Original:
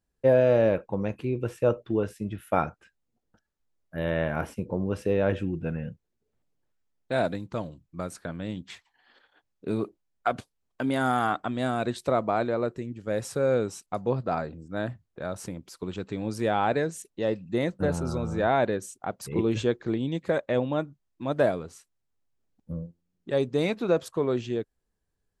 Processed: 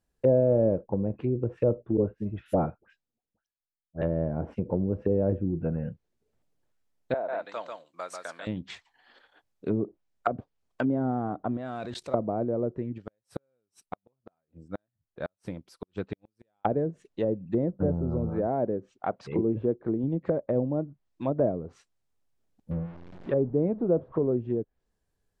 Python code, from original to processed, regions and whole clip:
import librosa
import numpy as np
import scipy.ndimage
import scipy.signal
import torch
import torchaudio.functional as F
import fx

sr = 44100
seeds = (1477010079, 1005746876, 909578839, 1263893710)

y = fx.chain(x, sr, fx.dispersion(late='highs', ms=77.0, hz=1300.0),
    fx.band_widen(depth_pct=70), at=(1.97, 4.02))
y = fx.chain(y, sr, fx.highpass(hz=810.0, slope=12),
    fx.echo_single(ms=142, db=-4.5), at=(7.14, 8.47))
y = fx.chain(y, sr, fx.law_mismatch(coded='mu'),
    fx.high_shelf(hz=8600.0, db=4.5),
    fx.level_steps(step_db=19), at=(11.57, 12.14))
y = fx.chain(y, sr, fx.peak_eq(hz=6900.0, db=-8.5, octaves=0.25),
    fx.gate_flip(shuts_db=-20.0, range_db=-41),
    fx.upward_expand(threshold_db=-58.0, expansion=1.5), at=(12.98, 16.65))
y = fx.chain(y, sr, fx.lowpass(hz=3900.0, slope=12),
    fx.low_shelf(hz=130.0, db=-8.0), at=(18.29, 20.04))
y = fx.chain(y, sr, fx.zero_step(step_db=-40.5),
    fx.lowpass(hz=2400.0, slope=12), at=(22.71, 24.31))
y = fx.env_lowpass_down(y, sr, base_hz=430.0, full_db=-24.5)
y = fx.peak_eq(y, sr, hz=640.0, db=2.5, octaves=0.77)
y = F.gain(torch.from_numpy(y), 1.5).numpy()